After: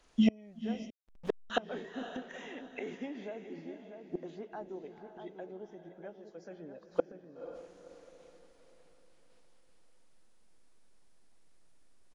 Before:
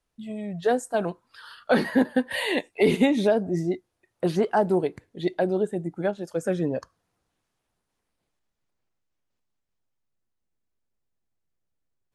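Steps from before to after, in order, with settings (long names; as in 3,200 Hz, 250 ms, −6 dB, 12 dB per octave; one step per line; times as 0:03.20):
hearing-aid frequency compression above 2,700 Hz 1.5 to 1
slap from a distant wall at 110 metres, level −9 dB
in parallel at −1 dB: downward compressor 10 to 1, threshold −31 dBFS, peak gain reduction 16.5 dB
on the sum: mains-hum notches 60/120/180 Hz
gate with flip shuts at −25 dBFS, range −33 dB
on a send: feedback delay with all-pass diffusion 503 ms, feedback 41%, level −10 dB
on the sum: dynamic equaliser 280 Hz, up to +3 dB, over −55 dBFS, Q 1.5
0:00.90–0:01.50: slack as between gear wheels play −37 dBFS
parametric band 100 Hz −11 dB 1.1 octaves
level +9.5 dB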